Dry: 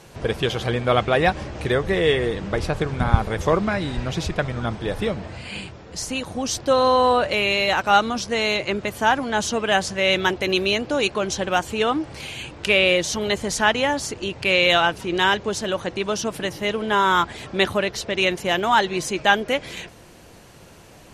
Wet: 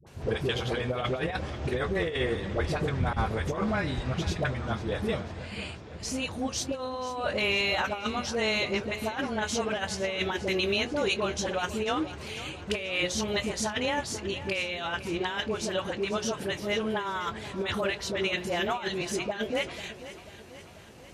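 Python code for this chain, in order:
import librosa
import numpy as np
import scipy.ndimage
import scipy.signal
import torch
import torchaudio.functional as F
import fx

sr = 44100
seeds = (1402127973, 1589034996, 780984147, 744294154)

y = scipy.signal.sosfilt(scipy.signal.butter(2, 48.0, 'highpass', fs=sr, output='sos'), x)
y = fx.high_shelf(y, sr, hz=8600.0, db=-4.5)
y = fx.hum_notches(y, sr, base_hz=60, count=10)
y = fx.doubler(y, sr, ms=23.0, db=-13.5)
y = fx.dispersion(y, sr, late='highs', ms=68.0, hz=600.0)
y = fx.over_compress(y, sr, threshold_db=-21.0, ratio=-0.5)
y = fx.peak_eq(y, sr, hz=67.0, db=5.5, octaves=1.2)
y = fx.echo_feedback(y, sr, ms=491, feedback_pct=57, wet_db=-15)
y = y * 10.0 ** (-7.0 / 20.0)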